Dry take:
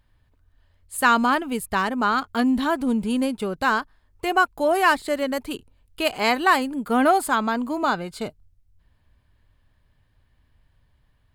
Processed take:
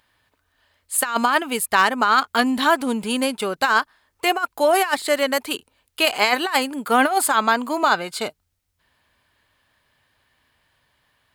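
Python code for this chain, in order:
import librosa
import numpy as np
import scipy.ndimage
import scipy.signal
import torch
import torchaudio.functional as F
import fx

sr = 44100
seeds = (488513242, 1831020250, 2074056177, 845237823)

y = fx.highpass(x, sr, hz=930.0, slope=6)
y = fx.over_compress(y, sr, threshold_db=-24.0, ratio=-0.5)
y = y * librosa.db_to_amplitude(8.0)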